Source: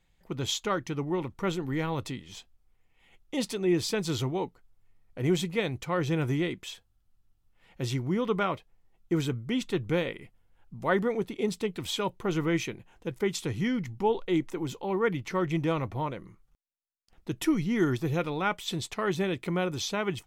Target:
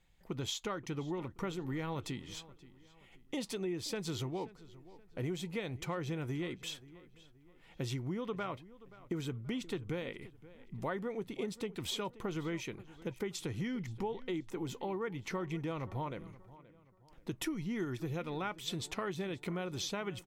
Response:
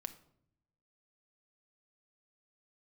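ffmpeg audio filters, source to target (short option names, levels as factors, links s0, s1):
-filter_complex "[0:a]acompressor=threshold=0.02:ratio=6,asplit=2[s0][s1];[s1]adelay=528,lowpass=f=3800:p=1,volume=0.119,asplit=2[s2][s3];[s3]adelay=528,lowpass=f=3800:p=1,volume=0.4,asplit=2[s4][s5];[s5]adelay=528,lowpass=f=3800:p=1,volume=0.4[s6];[s0][s2][s4][s6]amix=inputs=4:normalize=0,volume=0.891"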